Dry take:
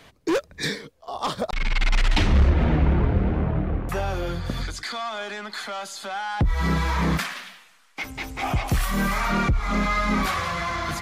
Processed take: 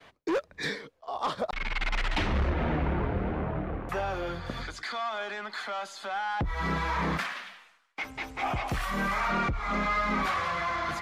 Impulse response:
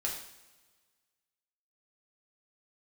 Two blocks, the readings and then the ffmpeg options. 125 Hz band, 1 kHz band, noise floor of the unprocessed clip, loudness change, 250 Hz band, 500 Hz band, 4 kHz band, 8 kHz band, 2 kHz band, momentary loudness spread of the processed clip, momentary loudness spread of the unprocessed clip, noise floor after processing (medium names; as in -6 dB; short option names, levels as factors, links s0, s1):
-10.0 dB, -2.5 dB, -55 dBFS, -6.0 dB, -7.5 dB, -4.0 dB, -6.5 dB, -11.0 dB, -3.0 dB, 8 LU, 11 LU, -63 dBFS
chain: -filter_complex "[0:a]asplit=2[s0][s1];[s1]highpass=f=720:p=1,volume=3.55,asoftclip=type=tanh:threshold=0.282[s2];[s0][s2]amix=inputs=2:normalize=0,lowpass=f=1800:p=1,volume=0.501,agate=range=0.0224:threshold=0.00316:ratio=3:detection=peak,volume=0.531"